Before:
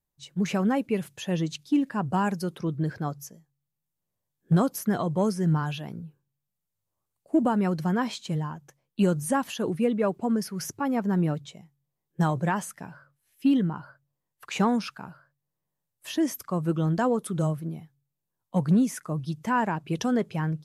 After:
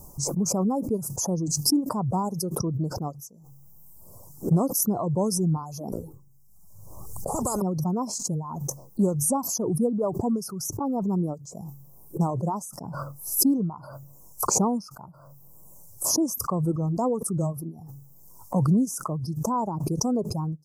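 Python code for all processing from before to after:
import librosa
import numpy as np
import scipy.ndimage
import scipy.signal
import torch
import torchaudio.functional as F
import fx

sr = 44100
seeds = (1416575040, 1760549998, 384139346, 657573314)

y = fx.chain(x, sr, fx.low_shelf(hz=170.0, db=9.5),
    fx.spectral_comp(ratio=10.0), at=(5.92, 7.62))
y = fx.dereverb_blind(y, sr, rt60_s=0.9)
y = scipy.signal.sosfilt(scipy.signal.cheby2(4, 40, [1600.0, 3800.0], 'bandstop', fs=sr, output='sos'), y)
y = fx.pre_swell(y, sr, db_per_s=30.0)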